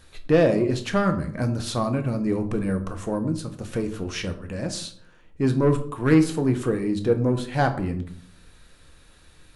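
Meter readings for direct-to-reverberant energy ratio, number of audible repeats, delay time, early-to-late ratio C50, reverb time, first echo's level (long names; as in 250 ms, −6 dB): 6.0 dB, no echo audible, no echo audible, 12.0 dB, 0.55 s, no echo audible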